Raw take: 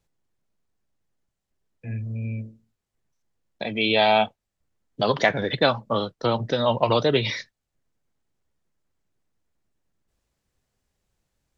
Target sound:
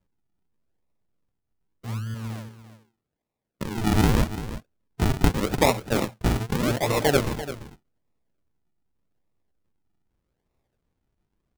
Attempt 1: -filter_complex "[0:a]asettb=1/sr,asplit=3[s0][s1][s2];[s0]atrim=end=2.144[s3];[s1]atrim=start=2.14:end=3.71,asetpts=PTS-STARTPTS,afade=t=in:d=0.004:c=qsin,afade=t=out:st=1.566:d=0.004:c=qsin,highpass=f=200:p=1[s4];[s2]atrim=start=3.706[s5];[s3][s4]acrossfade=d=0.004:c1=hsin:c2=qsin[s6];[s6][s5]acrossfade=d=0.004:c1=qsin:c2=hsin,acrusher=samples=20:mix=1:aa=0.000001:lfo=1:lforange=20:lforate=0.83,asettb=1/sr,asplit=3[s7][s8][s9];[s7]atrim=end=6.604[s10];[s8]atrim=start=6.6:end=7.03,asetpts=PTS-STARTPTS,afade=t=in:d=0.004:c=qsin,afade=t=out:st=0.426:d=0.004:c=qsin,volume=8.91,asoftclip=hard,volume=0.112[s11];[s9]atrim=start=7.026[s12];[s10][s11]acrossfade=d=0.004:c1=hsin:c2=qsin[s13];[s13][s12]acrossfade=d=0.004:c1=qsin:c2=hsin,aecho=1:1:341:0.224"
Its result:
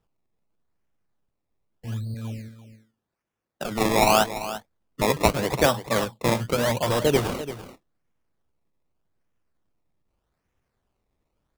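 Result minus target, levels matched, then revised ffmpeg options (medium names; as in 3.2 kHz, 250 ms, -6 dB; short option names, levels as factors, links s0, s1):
decimation with a swept rate: distortion -13 dB
-filter_complex "[0:a]asettb=1/sr,asplit=3[s0][s1][s2];[s0]atrim=end=2.144[s3];[s1]atrim=start=2.14:end=3.71,asetpts=PTS-STARTPTS,afade=t=in:d=0.004:c=qsin,afade=t=out:st=1.566:d=0.004:c=qsin,highpass=f=200:p=1[s4];[s2]atrim=start=3.706[s5];[s3][s4]acrossfade=d=0.004:c1=hsin:c2=qsin[s6];[s6][s5]acrossfade=d=0.004:c1=qsin:c2=hsin,acrusher=samples=56:mix=1:aa=0.000001:lfo=1:lforange=56:lforate=0.83,asettb=1/sr,asplit=3[s7][s8][s9];[s7]atrim=end=6.604[s10];[s8]atrim=start=6.6:end=7.03,asetpts=PTS-STARTPTS,afade=t=in:d=0.004:c=qsin,afade=t=out:st=0.426:d=0.004:c=qsin,volume=8.91,asoftclip=hard,volume=0.112[s11];[s9]atrim=start=7.026[s12];[s10][s11]acrossfade=d=0.004:c1=hsin:c2=qsin[s13];[s13][s12]acrossfade=d=0.004:c1=qsin:c2=hsin,aecho=1:1:341:0.224"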